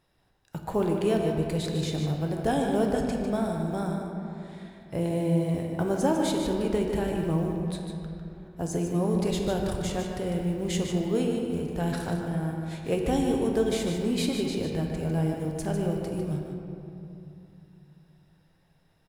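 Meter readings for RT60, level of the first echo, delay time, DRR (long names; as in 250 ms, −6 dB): 2.8 s, −7.5 dB, 150 ms, 0.5 dB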